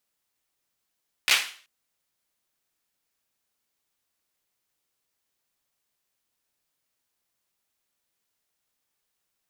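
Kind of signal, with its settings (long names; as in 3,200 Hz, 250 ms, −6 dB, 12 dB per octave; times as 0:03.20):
synth clap length 0.38 s, bursts 3, apart 15 ms, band 2,500 Hz, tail 0.43 s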